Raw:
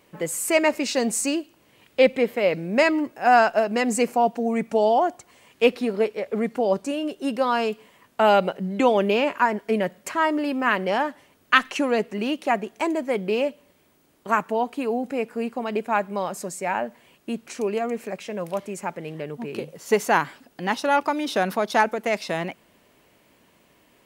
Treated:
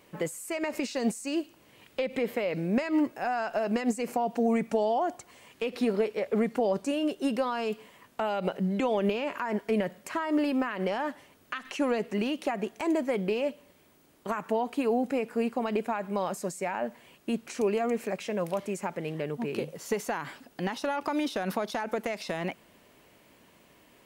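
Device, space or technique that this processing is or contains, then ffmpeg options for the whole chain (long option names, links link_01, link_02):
de-esser from a sidechain: -filter_complex "[0:a]asplit=2[link_01][link_02];[link_02]highpass=frequency=4700:poles=1,apad=whole_len=1060794[link_03];[link_01][link_03]sidechaincompress=threshold=-39dB:ratio=12:attack=3.6:release=71"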